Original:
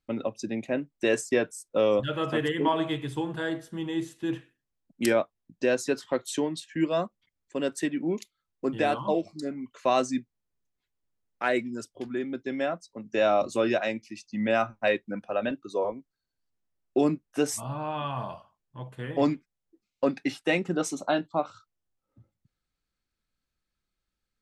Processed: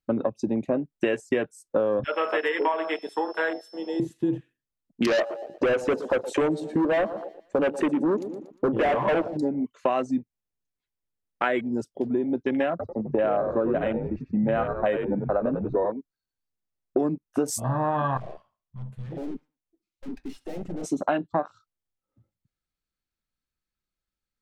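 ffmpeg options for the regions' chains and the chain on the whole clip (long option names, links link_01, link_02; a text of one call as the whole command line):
ffmpeg -i in.wav -filter_complex "[0:a]asettb=1/sr,asplit=3[link_01][link_02][link_03];[link_01]atrim=end=2.044[link_04];[link_02]atrim=start=2.04:end=4,asetpts=PTS-STARTPTS,afade=type=in:duration=0.004:curve=qsin,afade=type=out:start_time=1.956:duration=0.004:curve=qsin,highpass=frequency=440:width=0.5412,highpass=frequency=440:width=1.3066,aeval=exprs='val(0)+0.00562*sin(2*PI*5300*n/s)':channel_layout=same[link_05];[link_03]atrim=start=3.996[link_06];[link_04][link_05]acrossfade=duration=0.004:curve1=hsin:curve2=qsin[link_07];[link_07][link_06]acrossfade=duration=0.004:curve1=qsin:curve2=hsin,asettb=1/sr,asplit=3[link_08][link_09][link_10];[link_08]atrim=end=5.074[link_11];[link_09]atrim=start=5.07:end=9.37,asetpts=PTS-STARTPTS,afade=type=in:duration=0.004:curve=qsin,afade=type=out:start_time=4.296:duration=0.004:curve=qsin,equalizer=frequency=550:width=1:gain=12,volume=22.5dB,asoftclip=hard,volume=-22.5dB,aecho=1:1:118|236|354|472|590:0.178|0.0871|0.0427|0.0209|0.0103,atrim=end_sample=189630[link_12];[link_10]atrim=start=9.366[link_13];[link_11][link_12]acrossfade=duration=0.004:curve1=hsin:curve2=qsin[link_14];[link_14][link_13]acrossfade=duration=0.004:curve1=qsin:curve2=hsin,asettb=1/sr,asplit=3[link_15][link_16][link_17];[link_15]atrim=end=12.704[link_18];[link_16]atrim=start=12.7:end=15.86,asetpts=PTS-STARTPTS,afade=type=in:duration=0.004:curve=qsin,afade=type=out:start_time=3.156:duration=0.004:curve=qsin,lowpass=1500,asplit=6[link_19][link_20][link_21][link_22][link_23][link_24];[link_20]adelay=93,afreqshift=-70,volume=-7.5dB[link_25];[link_21]adelay=186,afreqshift=-140,volume=-15.2dB[link_26];[link_22]adelay=279,afreqshift=-210,volume=-23dB[link_27];[link_23]adelay=372,afreqshift=-280,volume=-30.7dB[link_28];[link_24]adelay=465,afreqshift=-350,volume=-38.5dB[link_29];[link_19][link_25][link_26][link_27][link_28][link_29]amix=inputs=6:normalize=0,atrim=end_sample=139356[link_30];[link_17]atrim=start=15.856[link_31];[link_18][link_30]acrossfade=duration=0.004:curve1=hsin:curve2=qsin[link_32];[link_32][link_31]acrossfade=duration=0.004:curve1=qsin:curve2=hsin,asettb=1/sr,asplit=3[link_33][link_34][link_35];[link_33]atrim=end=18.174[link_36];[link_34]atrim=start=18.17:end=20.84,asetpts=PTS-STARTPTS,afade=type=in:duration=0.004:curve=qsin,afade=type=out:start_time=2.666:duration=0.004:curve=qsin,aeval=exprs='(tanh(126*val(0)+0.6)-tanh(0.6))/126':channel_layout=same,aecho=1:1:68|136|204:0.1|0.036|0.013,atrim=end_sample=117747[link_37];[link_35]atrim=start=20.836[link_38];[link_36][link_37]acrossfade=duration=0.004:curve1=hsin:curve2=qsin[link_39];[link_39][link_38]acrossfade=duration=0.004:curve1=qsin:curve2=hsin,acontrast=63,afwtdn=0.0316,acompressor=threshold=-26dB:ratio=6,volume=4.5dB" out.wav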